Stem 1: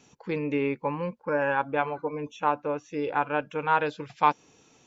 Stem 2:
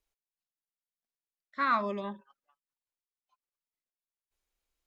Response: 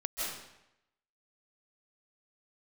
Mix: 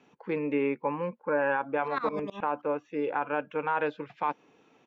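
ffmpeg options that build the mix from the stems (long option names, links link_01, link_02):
-filter_complex "[0:a]acrossover=split=170 3100:gain=0.178 1 0.0708[link_01][link_02][link_03];[link_01][link_02][link_03]amix=inputs=3:normalize=0,volume=0dB[link_04];[1:a]agate=range=-33dB:threshold=-56dB:ratio=3:detection=peak,aeval=exprs='val(0)*pow(10,-24*if(lt(mod(-9.5*n/s,1),2*abs(-9.5)/1000),1-mod(-9.5*n/s,1)/(2*abs(-9.5)/1000),(mod(-9.5*n/s,1)-2*abs(-9.5)/1000)/(1-2*abs(-9.5)/1000))/20)':channel_layout=same,adelay=300,volume=2.5dB[link_05];[link_04][link_05]amix=inputs=2:normalize=0,alimiter=limit=-17.5dB:level=0:latency=1:release=36"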